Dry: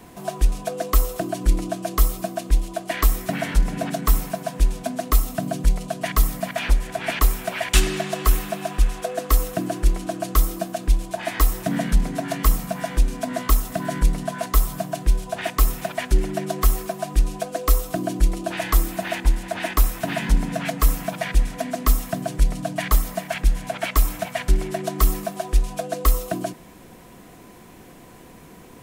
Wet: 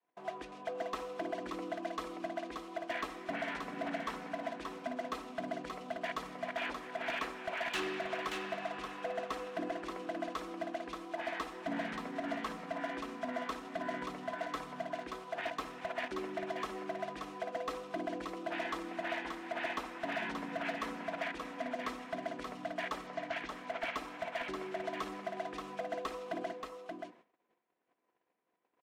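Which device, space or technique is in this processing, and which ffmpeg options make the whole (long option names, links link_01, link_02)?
walkie-talkie: -filter_complex "[0:a]adynamicequalizer=threshold=0.00794:dfrequency=250:dqfactor=1.9:tfrequency=250:tqfactor=1.9:attack=5:release=100:ratio=0.375:range=3:mode=boostabove:tftype=bell,highpass=450,lowpass=2600,asoftclip=type=hard:threshold=-23.5dB,agate=range=-29dB:threshold=-46dB:ratio=16:detection=peak,asettb=1/sr,asplit=3[link_01][link_02][link_03];[link_01]atrim=end=23.074[link_04];[link_02]atrim=start=23.07:end=23.61,asetpts=PTS-STARTPTS,afade=type=in:duration=0.004:curve=qsin,afade=type=out:start_time=0.536:duration=0.004:curve=qsin,lowpass=frequency=7000:width=0.5412,lowpass=frequency=7000:width=1.3066[link_05];[link_03]atrim=start=23.606[link_06];[link_04][link_05]acrossfade=duration=0.004:curve1=hsin:curve2=qsin[link_07];[link_07][link_06]acrossfade=duration=0.004:curve1=qsin:curve2=hsin,aecho=1:1:579:0.562,volume=-8dB"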